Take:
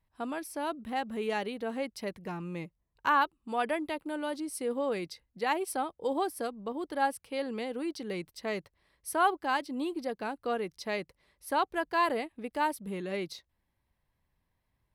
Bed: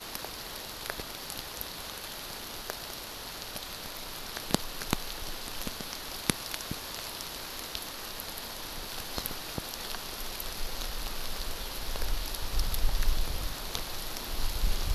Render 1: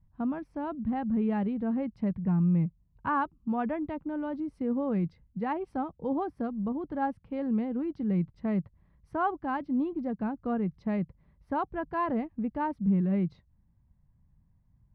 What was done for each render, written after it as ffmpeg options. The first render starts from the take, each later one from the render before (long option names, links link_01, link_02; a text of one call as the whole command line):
ffmpeg -i in.wav -af "lowpass=1200,lowshelf=frequency=270:width_type=q:width=1.5:gain=13.5" out.wav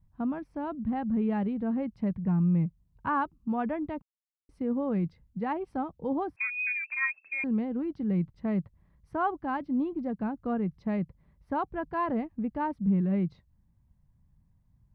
ffmpeg -i in.wav -filter_complex "[0:a]asettb=1/sr,asplit=3[link_01][link_02][link_03];[link_01]atrim=end=6.364[link_04];[link_02]atrim=start=6.36:end=7.44,asetpts=PTS-STARTPTS,afade=type=in:duration=0.004:curve=qsin,afade=type=out:start_time=1.076:duration=0.004:curve=qsin,lowpass=frequency=2300:width_type=q:width=0.5098,lowpass=frequency=2300:width_type=q:width=0.6013,lowpass=frequency=2300:width_type=q:width=0.9,lowpass=frequency=2300:width_type=q:width=2.563,afreqshift=-2700[link_05];[link_03]atrim=start=7.436[link_06];[link_04][link_05]acrossfade=duration=0.004:curve1=hsin:curve2=qsin[link_07];[link_07][link_06]acrossfade=duration=0.004:curve1=qsin:curve2=hsin,asplit=3[link_08][link_09][link_10];[link_08]atrim=end=4.02,asetpts=PTS-STARTPTS,afade=type=out:start_time=4.016:duration=0.004:curve=hsin[link_11];[link_09]atrim=start=4.02:end=4.49,asetpts=PTS-STARTPTS,volume=0[link_12];[link_10]atrim=start=4.49,asetpts=PTS-STARTPTS,afade=type=in:duration=0.004:curve=hsin[link_13];[link_11][link_12][link_13]concat=n=3:v=0:a=1" out.wav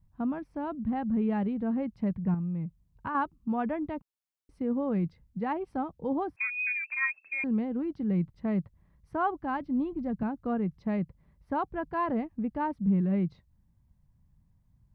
ffmpeg -i in.wav -filter_complex "[0:a]asettb=1/sr,asplit=3[link_01][link_02][link_03];[link_01]atrim=end=2.344[link_04];[link_02]atrim=start=2.34:end=3.15,asetpts=PTS-STARTPTS,afade=type=in:duration=0.004:curve=qsin,afade=type=out:start_time=0.806:duration=0.004:curve=qsin,acompressor=threshold=-30dB:ratio=6:attack=3.2:release=140:knee=1:detection=peak[link_05];[link_03]atrim=start=3.146[link_06];[link_04][link_05]acrossfade=duration=0.004:curve1=hsin:curve2=qsin[link_07];[link_07][link_06]acrossfade=duration=0.004:curve1=qsin:curve2=hsin,asettb=1/sr,asplit=3[link_08][link_09][link_10];[link_08]atrim=end=9.314[link_11];[link_09]atrim=start=9.31:end=10.23,asetpts=PTS-STARTPTS,afade=type=in:duration=0.004:curve=qsin,afade=type=out:start_time=0.916:duration=0.004:curve=qsin,asubboost=boost=9:cutoff=180[link_12];[link_10]atrim=start=10.226[link_13];[link_11][link_12]acrossfade=duration=0.004:curve1=hsin:curve2=qsin[link_14];[link_14][link_13]acrossfade=duration=0.004:curve1=qsin:curve2=hsin" out.wav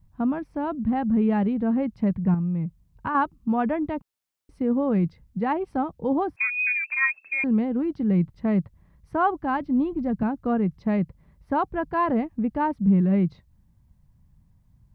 ffmpeg -i in.wav -af "volume=6.5dB" out.wav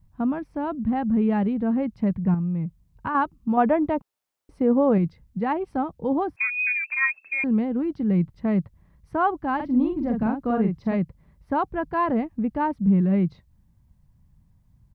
ffmpeg -i in.wav -filter_complex "[0:a]asettb=1/sr,asplit=3[link_01][link_02][link_03];[link_01]atrim=end=3.574[link_04];[link_02]atrim=start=3.57:end=4.98,asetpts=PTS-STARTPTS,afade=type=in:duration=0.004:curve=qsin,afade=type=out:start_time=1.406:duration=0.004:curve=qsin,equalizer=frequency=660:width_type=o:width=2.2:gain=7[link_05];[link_03]atrim=start=4.976[link_06];[link_04][link_05]acrossfade=duration=0.004:curve1=hsin:curve2=qsin[link_07];[link_07][link_06]acrossfade=duration=0.004:curve1=qsin:curve2=hsin,asplit=3[link_08][link_09][link_10];[link_08]afade=type=out:start_time=9.59:duration=0.02[link_11];[link_09]asplit=2[link_12][link_13];[link_13]adelay=45,volume=-4dB[link_14];[link_12][link_14]amix=inputs=2:normalize=0,afade=type=in:start_time=9.59:duration=0.02,afade=type=out:start_time=10.94:duration=0.02[link_15];[link_10]afade=type=in:start_time=10.94:duration=0.02[link_16];[link_11][link_15][link_16]amix=inputs=3:normalize=0" out.wav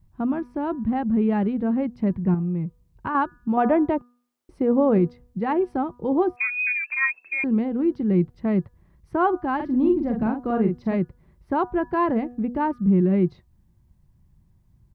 ffmpeg -i in.wav -af "equalizer=frequency=360:width_type=o:width=0.2:gain=11,bandreject=frequency=243.6:width_type=h:width=4,bandreject=frequency=487.2:width_type=h:width=4,bandreject=frequency=730.8:width_type=h:width=4,bandreject=frequency=974.4:width_type=h:width=4,bandreject=frequency=1218:width_type=h:width=4,bandreject=frequency=1461.6:width_type=h:width=4,bandreject=frequency=1705.2:width_type=h:width=4" out.wav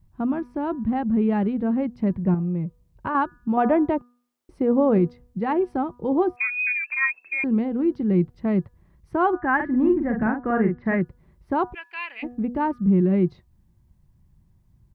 ffmpeg -i in.wav -filter_complex "[0:a]asettb=1/sr,asplit=3[link_01][link_02][link_03];[link_01]atrim=end=2.164[link_04];[link_02]atrim=start=2.16:end=3.14,asetpts=PTS-STARTPTS,afade=type=in:duration=0.004:curve=qsin,afade=type=out:start_time=0.976:duration=0.004:curve=qsin,equalizer=frequency=580:width=4.4:gain=7.5[link_05];[link_03]atrim=start=3.136[link_06];[link_04][link_05]acrossfade=duration=0.004:curve1=hsin:curve2=qsin[link_07];[link_07][link_06]acrossfade=duration=0.004:curve1=qsin:curve2=hsin,asettb=1/sr,asplit=3[link_08][link_09][link_10];[link_08]atrim=end=9.334[link_11];[link_09]atrim=start=9.33:end=11.01,asetpts=PTS-STARTPTS,afade=type=in:duration=0.004:curve=qsin,afade=type=out:start_time=1.676:duration=0.004:curve=qsin,lowpass=frequency=1800:width_type=q:width=5.3[link_12];[link_10]atrim=start=11.006[link_13];[link_11][link_12]acrossfade=duration=0.004:curve1=hsin:curve2=qsin[link_14];[link_14][link_13]acrossfade=duration=0.004:curve1=qsin:curve2=hsin,asplit=3[link_15][link_16][link_17];[link_15]afade=type=out:start_time=11.73:duration=0.02[link_18];[link_16]highpass=frequency=2500:width_type=q:width=12,afade=type=in:start_time=11.73:duration=0.02,afade=type=out:start_time=12.22:duration=0.02[link_19];[link_17]afade=type=in:start_time=12.22:duration=0.02[link_20];[link_18][link_19][link_20]amix=inputs=3:normalize=0" out.wav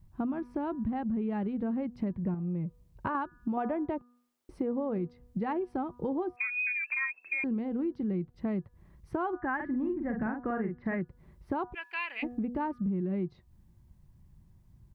ffmpeg -i in.wav -af "acompressor=threshold=-30dB:ratio=6" out.wav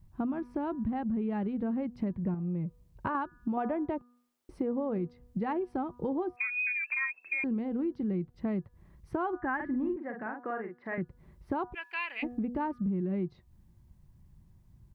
ffmpeg -i in.wav -filter_complex "[0:a]asettb=1/sr,asplit=3[link_01][link_02][link_03];[link_01]atrim=end=9.964[link_04];[link_02]atrim=start=9.96:end=10.98,asetpts=PTS-STARTPTS,afade=type=in:duration=0.004:curve=qsin,afade=type=out:start_time=1.016:duration=0.004:curve=qsin,highpass=410[link_05];[link_03]atrim=start=10.976[link_06];[link_04][link_05]acrossfade=duration=0.004:curve1=hsin:curve2=qsin[link_07];[link_07][link_06]acrossfade=duration=0.004:curve1=qsin:curve2=hsin" out.wav